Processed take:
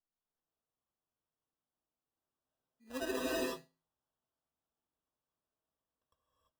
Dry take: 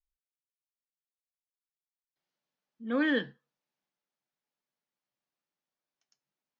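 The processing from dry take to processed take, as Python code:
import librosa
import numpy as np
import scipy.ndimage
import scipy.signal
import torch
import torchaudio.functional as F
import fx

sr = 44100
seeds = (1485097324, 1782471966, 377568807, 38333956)

y = fx.tilt_shelf(x, sr, db=-4.0, hz=1400.0)
y = fx.notch(y, sr, hz=4100.0, q=12.0)
y = fx.stiff_resonator(y, sr, f0_hz=77.0, decay_s=0.48, stiffness=0.03)
y = fx.sample_hold(y, sr, seeds[0], rate_hz=2200.0, jitter_pct=0)
y = fx.rev_gated(y, sr, seeds[1], gate_ms=370, shape='rising', drr_db=-5.0)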